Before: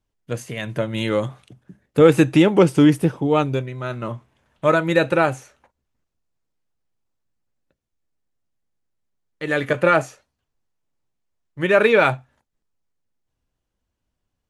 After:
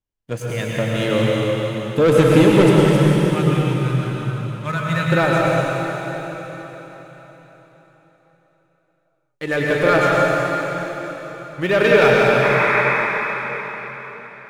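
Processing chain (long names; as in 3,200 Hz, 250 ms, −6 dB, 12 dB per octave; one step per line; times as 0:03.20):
0:02.69–0:05.12: drawn EQ curve 200 Hz 0 dB, 350 Hz −23 dB, 1,600 Hz −4 dB
leveller curve on the samples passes 2
0:12.42–0:12.81: sound drawn into the spectrogram noise 810–2,600 Hz −15 dBFS
dense smooth reverb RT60 4.3 s, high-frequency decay 0.95×, pre-delay 90 ms, DRR −4.5 dB
level −7 dB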